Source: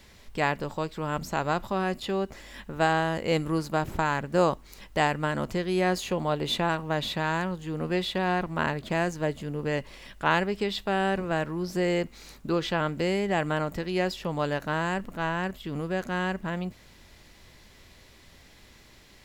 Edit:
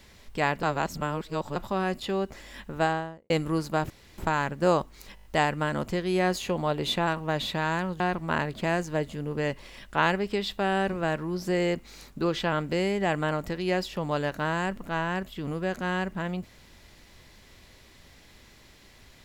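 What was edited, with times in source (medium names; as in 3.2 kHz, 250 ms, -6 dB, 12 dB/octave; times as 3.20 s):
0.63–1.56 s: reverse
2.73–3.30 s: studio fade out
3.90 s: insert room tone 0.28 s
4.87 s: stutter 0.02 s, 6 plays
7.62–8.28 s: delete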